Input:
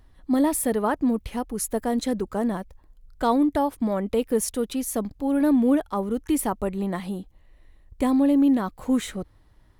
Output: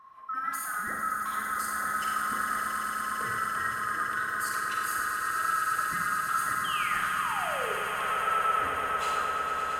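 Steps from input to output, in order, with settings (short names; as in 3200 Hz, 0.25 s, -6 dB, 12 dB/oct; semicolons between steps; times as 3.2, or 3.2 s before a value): band-swap scrambler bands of 1000 Hz; HPF 86 Hz 6 dB/oct; high shelf 3600 Hz -9.5 dB; limiter -29 dBFS, peak gain reduction 18 dB; painted sound fall, 6.64–7.74, 390–3300 Hz -39 dBFS; swelling echo 0.113 s, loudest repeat 8, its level -9.5 dB; Schroeder reverb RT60 1.2 s, combs from 33 ms, DRR -1 dB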